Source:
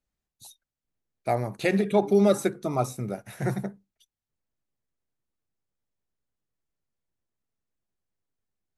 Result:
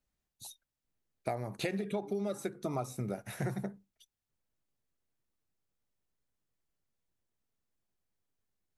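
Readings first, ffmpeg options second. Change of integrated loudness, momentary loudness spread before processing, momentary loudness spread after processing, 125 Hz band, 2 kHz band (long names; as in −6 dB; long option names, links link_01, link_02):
−11.5 dB, 14 LU, 14 LU, −8.5 dB, −10.0 dB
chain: -af "acompressor=threshold=-31dB:ratio=16"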